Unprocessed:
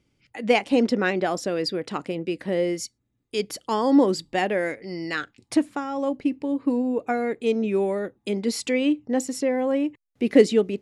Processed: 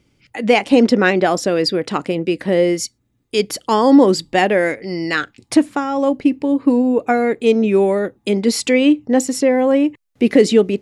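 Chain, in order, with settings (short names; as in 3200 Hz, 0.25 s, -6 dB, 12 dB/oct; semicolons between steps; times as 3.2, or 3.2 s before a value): maximiser +10 dB; gain -1 dB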